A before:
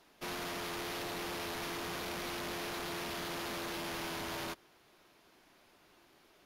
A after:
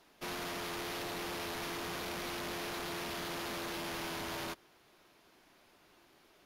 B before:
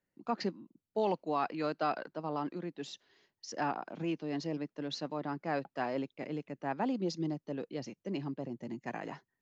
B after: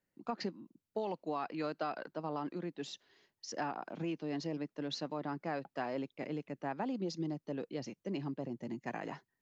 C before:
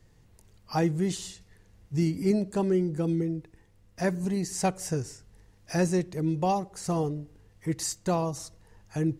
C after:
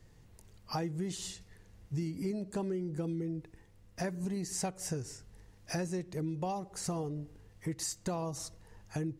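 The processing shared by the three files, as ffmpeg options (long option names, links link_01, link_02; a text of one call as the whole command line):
ffmpeg -i in.wav -af "acompressor=threshold=-33dB:ratio=6" out.wav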